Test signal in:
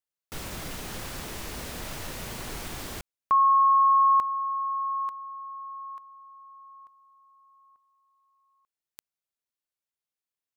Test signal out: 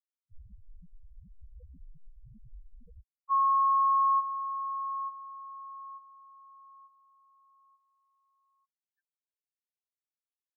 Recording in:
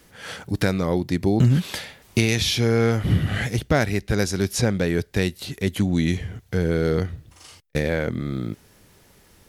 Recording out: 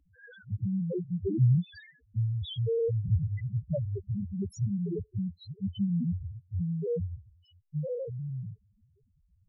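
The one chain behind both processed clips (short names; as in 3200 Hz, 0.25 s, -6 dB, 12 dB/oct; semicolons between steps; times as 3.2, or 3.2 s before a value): loudest bins only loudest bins 1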